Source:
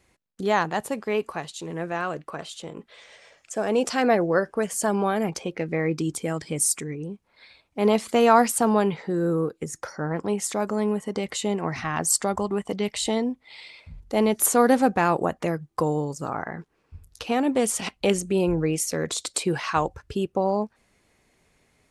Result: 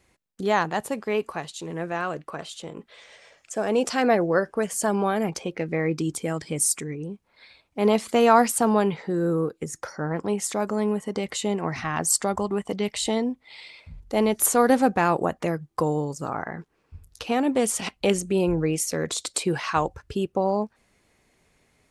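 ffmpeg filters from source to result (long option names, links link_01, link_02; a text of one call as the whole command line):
ffmpeg -i in.wav -filter_complex "[0:a]asettb=1/sr,asplit=3[link_01][link_02][link_03];[link_01]atrim=end=13.994[link_04];[link_02]atrim=start=13.99:end=14.7,asetpts=PTS-STARTPTS,afade=type=in:duration=0.004:curve=qsin,afade=type=out:start_time=0.706:duration=0.004:curve=qsin,asubboost=boost=10:cutoff=100[link_05];[link_03]atrim=start=14.696[link_06];[link_04][link_05]acrossfade=duration=0.004:curve1=hsin:curve2=qsin[link_07];[link_07][link_06]acrossfade=duration=0.004:curve1=qsin:curve2=hsin" out.wav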